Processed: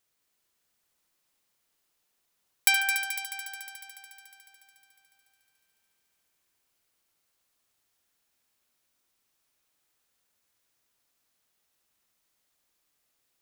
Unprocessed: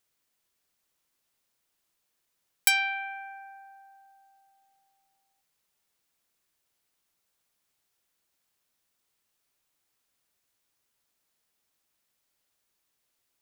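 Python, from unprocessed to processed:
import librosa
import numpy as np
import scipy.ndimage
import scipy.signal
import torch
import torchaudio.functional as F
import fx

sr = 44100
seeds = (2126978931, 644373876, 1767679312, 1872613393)

y = fx.echo_heads(x, sr, ms=72, heads='first and third', feedback_pct=75, wet_db=-9.0)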